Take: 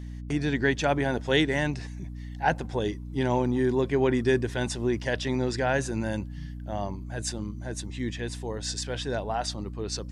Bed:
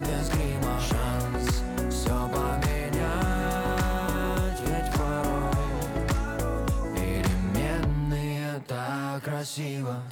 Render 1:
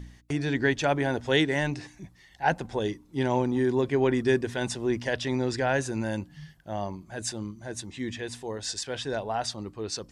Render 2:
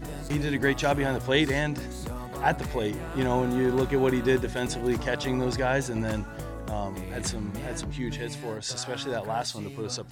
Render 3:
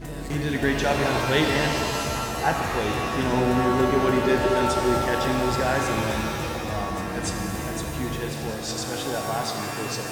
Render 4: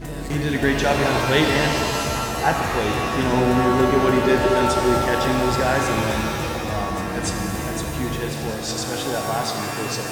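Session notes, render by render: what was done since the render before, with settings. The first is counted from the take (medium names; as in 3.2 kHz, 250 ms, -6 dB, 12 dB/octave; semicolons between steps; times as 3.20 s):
de-hum 60 Hz, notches 5
add bed -9 dB
pre-echo 290 ms -16.5 dB; pitch-shifted reverb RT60 2.6 s, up +7 st, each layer -2 dB, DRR 2.5 dB
trim +3.5 dB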